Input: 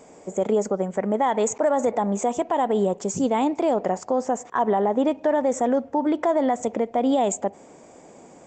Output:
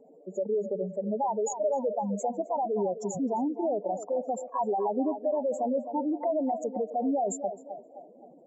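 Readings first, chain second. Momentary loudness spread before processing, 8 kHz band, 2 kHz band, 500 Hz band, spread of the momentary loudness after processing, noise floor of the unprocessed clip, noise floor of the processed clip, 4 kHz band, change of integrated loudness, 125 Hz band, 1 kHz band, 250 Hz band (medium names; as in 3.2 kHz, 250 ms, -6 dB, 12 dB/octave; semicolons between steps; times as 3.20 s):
4 LU, -8.5 dB, under -30 dB, -6.5 dB, 6 LU, -49 dBFS, -54 dBFS, under -25 dB, -7.0 dB, -8.0 dB, -7.0 dB, -7.5 dB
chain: spectral contrast enhancement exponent 3.1; on a send: band-passed feedback delay 261 ms, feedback 49%, band-pass 800 Hz, level -9 dB; on the sum: trim -6.5 dB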